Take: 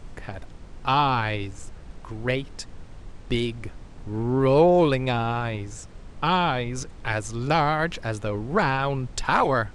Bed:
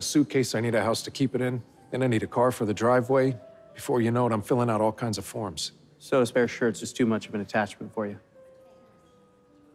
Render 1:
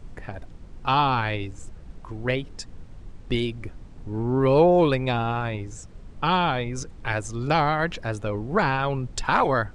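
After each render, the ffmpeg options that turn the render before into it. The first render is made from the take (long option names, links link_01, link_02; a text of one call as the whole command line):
ffmpeg -i in.wav -af "afftdn=noise_reduction=6:noise_floor=-44" out.wav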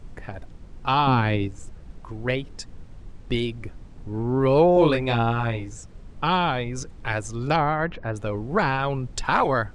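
ffmpeg -i in.wav -filter_complex "[0:a]asettb=1/sr,asplit=3[link_01][link_02][link_03];[link_01]atrim=end=1.074[link_04];[link_02]atrim=start=1.07:end=1.48,asetpts=PTS-STARTPTS,afade=type=in:duration=0.004:curve=qsin,afade=type=out:start_time=0.406:duration=0.004:curve=qsin,equalizer=frequency=200:width=0.61:gain=10[link_05];[link_03]atrim=start=1.476[link_06];[link_04][link_05]acrossfade=duration=0.004:curve1=hsin:curve2=qsin[link_07];[link_07][link_06]acrossfade=duration=0.004:curve1=qsin:curve2=hsin,asettb=1/sr,asplit=3[link_08][link_09][link_10];[link_08]atrim=end=4.744[link_11];[link_09]atrim=start=4.74:end=5.69,asetpts=PTS-STARTPTS,afade=type=in:duration=0.004:curve=qsin,afade=type=out:start_time=0.946:duration=0.004:curve=qsin,asplit=2[link_12][link_13];[link_13]adelay=26,volume=-3.5dB[link_14];[link_12][link_14]amix=inputs=2:normalize=0,atrim=end_sample=41895[link_15];[link_10]atrim=start=5.686[link_16];[link_11][link_15]acrossfade=duration=0.004:curve1=hsin:curve2=qsin[link_17];[link_17][link_16]acrossfade=duration=0.004:curve1=qsin:curve2=hsin,asettb=1/sr,asplit=3[link_18][link_19][link_20];[link_18]atrim=end=7.564[link_21];[link_19]atrim=start=7.56:end=8.16,asetpts=PTS-STARTPTS,afade=type=in:duration=0.004:curve=qsin,afade=type=out:start_time=0.596:duration=0.004:curve=qsin,lowpass=2000[link_22];[link_20]atrim=start=8.156[link_23];[link_21][link_22]acrossfade=duration=0.004:curve1=hsin:curve2=qsin[link_24];[link_24][link_23]acrossfade=duration=0.004:curve1=qsin:curve2=hsin" out.wav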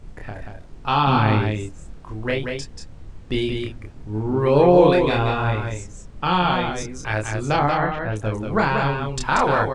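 ffmpeg -i in.wav -filter_complex "[0:a]asplit=2[link_01][link_02];[link_02]adelay=28,volume=-3dB[link_03];[link_01][link_03]amix=inputs=2:normalize=0,aecho=1:1:185:0.562" out.wav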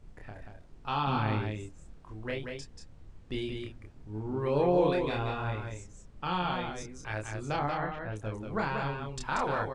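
ffmpeg -i in.wav -af "volume=-12dB" out.wav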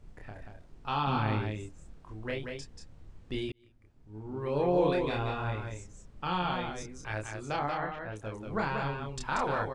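ffmpeg -i in.wav -filter_complex "[0:a]asettb=1/sr,asplit=3[link_01][link_02][link_03];[link_01]atrim=end=7.274[link_04];[link_02]atrim=start=7.27:end=8.47,asetpts=PTS-STARTPTS,afade=type=in:duration=0.004:curve=qsin,afade=type=out:start_time=1.196:duration=0.004:curve=qsin,lowshelf=frequency=220:gain=-6[link_05];[link_03]atrim=start=8.466[link_06];[link_04][link_05]acrossfade=duration=0.004:curve1=hsin:curve2=qsin[link_07];[link_07][link_06]acrossfade=duration=0.004:curve1=qsin:curve2=hsin,asplit=2[link_08][link_09];[link_08]atrim=end=3.52,asetpts=PTS-STARTPTS,afade=type=out:start_time=3.516:duration=0.004:curve=hsin[link_10];[link_09]atrim=start=3.52,asetpts=PTS-STARTPTS,afade=type=in:duration=1.41[link_11];[link_10][link_11]concat=n=2:v=0:a=1" out.wav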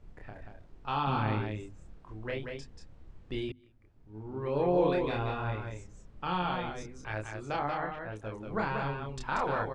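ffmpeg -i in.wav -af "highshelf=frequency=6200:gain=-11.5,bandreject=frequency=50:width_type=h:width=6,bandreject=frequency=100:width_type=h:width=6,bandreject=frequency=150:width_type=h:width=6,bandreject=frequency=200:width_type=h:width=6,bandreject=frequency=250:width_type=h:width=6" out.wav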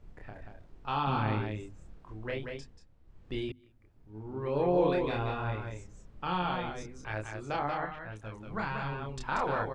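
ffmpeg -i in.wav -filter_complex "[0:a]asettb=1/sr,asplit=3[link_01][link_02][link_03];[link_01]atrim=end=7.854[link_04];[link_02]atrim=start=7.85:end=8.92,asetpts=PTS-STARTPTS,afade=type=in:duration=0.004:curve=qsin,afade=type=out:start_time=1.066:duration=0.004:curve=qsin,equalizer=frequency=440:width_type=o:width=1.6:gain=-7.5[link_05];[link_03]atrim=start=8.916[link_06];[link_04][link_05]acrossfade=duration=0.004:curve1=hsin:curve2=qsin[link_07];[link_07][link_06]acrossfade=duration=0.004:curve1=qsin:curve2=hsin,asplit=3[link_08][link_09][link_10];[link_08]atrim=end=2.85,asetpts=PTS-STARTPTS,afade=type=out:start_time=2.56:duration=0.29:silence=0.316228[link_11];[link_09]atrim=start=2.85:end=3.03,asetpts=PTS-STARTPTS,volume=-10dB[link_12];[link_10]atrim=start=3.03,asetpts=PTS-STARTPTS,afade=type=in:duration=0.29:silence=0.316228[link_13];[link_11][link_12][link_13]concat=n=3:v=0:a=1" out.wav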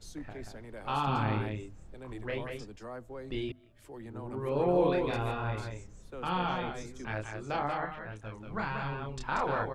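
ffmpeg -i in.wav -i bed.wav -filter_complex "[1:a]volume=-21.5dB[link_01];[0:a][link_01]amix=inputs=2:normalize=0" out.wav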